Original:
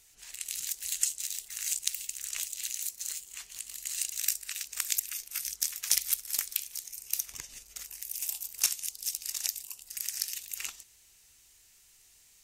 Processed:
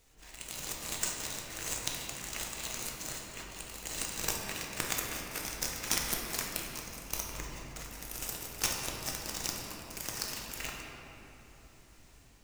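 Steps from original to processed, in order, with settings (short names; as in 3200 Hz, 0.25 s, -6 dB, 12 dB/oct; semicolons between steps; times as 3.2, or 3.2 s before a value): half-waves squared off; tilt shelf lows +6.5 dB, about 1400 Hz; AGC gain up to 3.5 dB; shoebox room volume 200 m³, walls hard, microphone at 0.55 m; gain -6 dB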